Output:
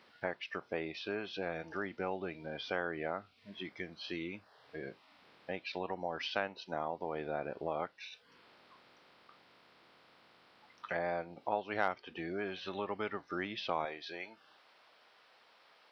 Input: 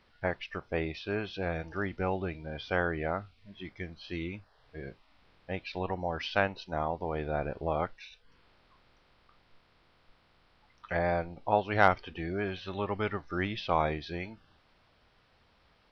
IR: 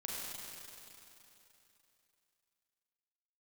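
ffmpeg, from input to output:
-af "acompressor=threshold=-44dB:ratio=2,asetnsamples=nb_out_samples=441:pad=0,asendcmd='13.85 highpass f 500',highpass=220,volume=4dB"

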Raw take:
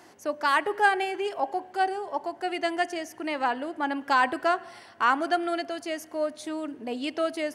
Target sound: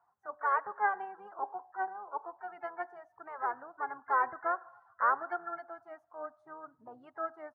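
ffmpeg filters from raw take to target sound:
ffmpeg -i in.wav -filter_complex "[0:a]firequalizer=gain_entry='entry(140,0);entry(290,-21);entry(820,0);entry(1300,5);entry(2300,-22);entry(7900,-23)':delay=0.05:min_phase=1,asplit=3[link_01][link_02][link_03];[link_02]asetrate=22050,aresample=44100,atempo=2,volume=-14dB[link_04];[link_03]asetrate=55563,aresample=44100,atempo=0.793701,volume=-14dB[link_05];[link_01][link_04][link_05]amix=inputs=3:normalize=0,afftdn=noise_reduction=18:noise_floor=-47,volume=-7.5dB" out.wav

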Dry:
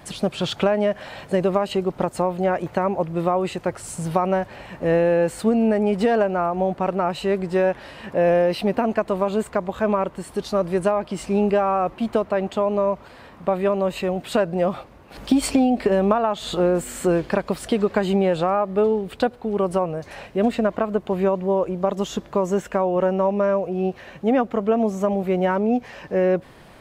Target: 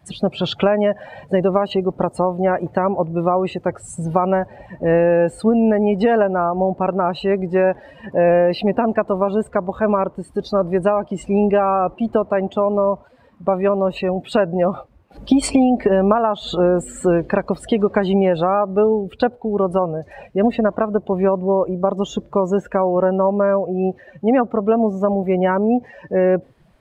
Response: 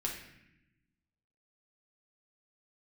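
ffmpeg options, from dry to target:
-af "afftdn=noise_reduction=18:noise_floor=-34,volume=3.5dB"

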